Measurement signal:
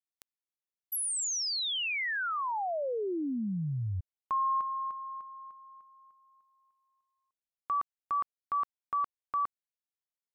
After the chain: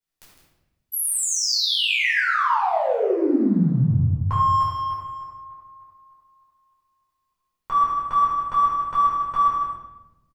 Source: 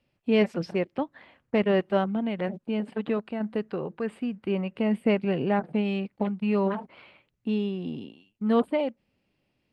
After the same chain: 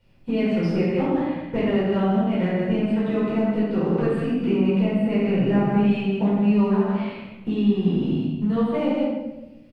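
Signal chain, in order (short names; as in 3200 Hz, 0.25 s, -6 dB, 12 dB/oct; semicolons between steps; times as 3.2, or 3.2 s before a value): low shelf 180 Hz +10.5 dB; in parallel at -8 dB: crossover distortion -38 dBFS; on the sum: loudspeakers at several distances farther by 30 m -12 dB, 54 m -9 dB; compressor 12:1, threshold -29 dBFS; shoebox room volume 440 m³, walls mixed, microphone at 4.7 m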